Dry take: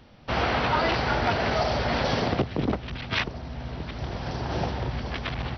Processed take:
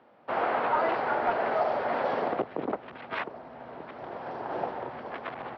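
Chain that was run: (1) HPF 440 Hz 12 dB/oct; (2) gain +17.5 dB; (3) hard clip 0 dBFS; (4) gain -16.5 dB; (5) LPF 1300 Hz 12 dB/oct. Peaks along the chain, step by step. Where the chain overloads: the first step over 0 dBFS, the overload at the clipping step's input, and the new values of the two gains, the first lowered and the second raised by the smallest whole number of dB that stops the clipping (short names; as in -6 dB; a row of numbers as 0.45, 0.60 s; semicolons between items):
-12.5, +5.0, 0.0, -16.5, -16.5 dBFS; step 2, 5.0 dB; step 2 +12.5 dB, step 4 -11.5 dB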